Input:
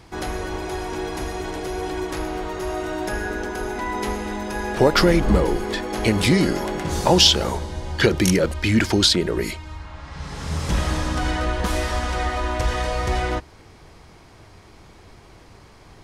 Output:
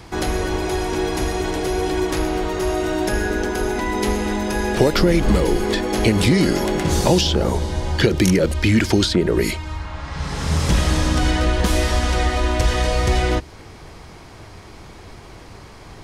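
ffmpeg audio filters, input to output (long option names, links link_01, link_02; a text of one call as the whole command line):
ffmpeg -i in.wav -filter_complex "[0:a]acrossover=split=600|2000[link_01][link_02][link_03];[link_01]acompressor=threshold=-20dB:ratio=4[link_04];[link_02]acompressor=threshold=-38dB:ratio=4[link_05];[link_03]acompressor=threshold=-31dB:ratio=4[link_06];[link_04][link_05][link_06]amix=inputs=3:normalize=0,volume=7dB" out.wav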